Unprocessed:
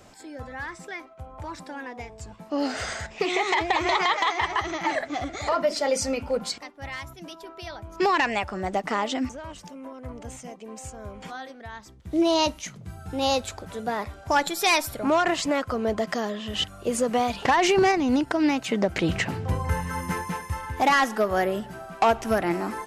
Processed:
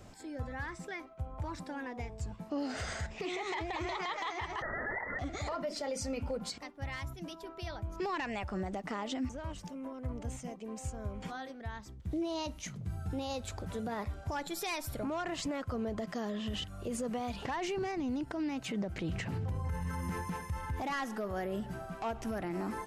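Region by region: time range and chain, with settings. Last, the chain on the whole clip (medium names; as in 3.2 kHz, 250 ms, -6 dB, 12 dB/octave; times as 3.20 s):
4.62–5.19 s: brick-wall FIR high-pass 480 Hz + frequency inversion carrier 2.6 kHz + level flattener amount 70%
whole clip: compression 2:1, threshold -31 dBFS; bass shelf 230 Hz +10.5 dB; peak limiter -22.5 dBFS; trim -6 dB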